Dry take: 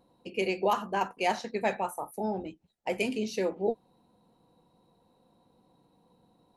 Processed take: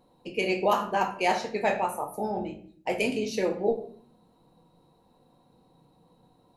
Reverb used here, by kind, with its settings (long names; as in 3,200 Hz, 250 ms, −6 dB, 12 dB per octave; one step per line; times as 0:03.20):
rectangular room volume 59 cubic metres, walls mixed, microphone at 0.46 metres
level +2 dB